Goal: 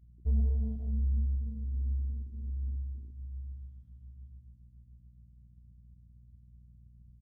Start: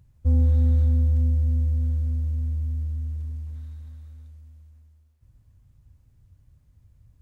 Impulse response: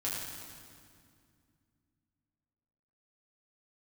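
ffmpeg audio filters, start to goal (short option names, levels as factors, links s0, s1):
-filter_complex "[0:a]aecho=1:1:997|1994:0.0794|0.0254,flanger=delay=6.9:depth=4.3:regen=-15:speed=1.3:shape=triangular,asetrate=38170,aresample=44100,atempo=1.15535,aeval=exprs='val(0)+0.00398*(sin(2*PI*60*n/s)+sin(2*PI*2*60*n/s)/2+sin(2*PI*3*60*n/s)/3+sin(2*PI*4*60*n/s)/4+sin(2*PI*5*60*n/s)/5)':c=same,afwtdn=0.0141,asplit=2[s0][s1];[1:a]atrim=start_sample=2205,adelay=128[s2];[s1][s2]afir=irnorm=-1:irlink=0,volume=0.133[s3];[s0][s3]amix=inputs=2:normalize=0,volume=0.501"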